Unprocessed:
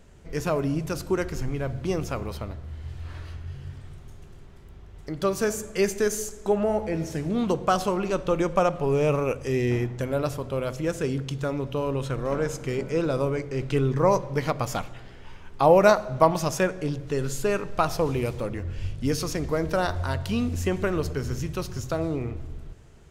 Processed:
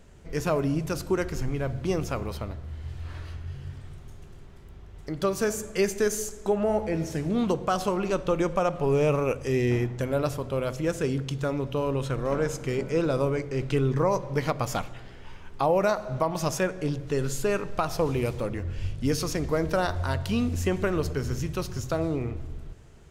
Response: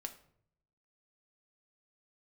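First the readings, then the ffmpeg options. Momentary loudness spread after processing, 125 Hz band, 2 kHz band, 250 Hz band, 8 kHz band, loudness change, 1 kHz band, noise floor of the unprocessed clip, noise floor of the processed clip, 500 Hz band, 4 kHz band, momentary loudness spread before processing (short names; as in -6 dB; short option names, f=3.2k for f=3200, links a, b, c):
13 LU, -0.5 dB, -1.5 dB, -0.5 dB, -0.5 dB, -1.5 dB, -3.5 dB, -45 dBFS, -45 dBFS, -2.0 dB, -1.0 dB, 14 LU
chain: -af "alimiter=limit=-14dB:level=0:latency=1:release=228"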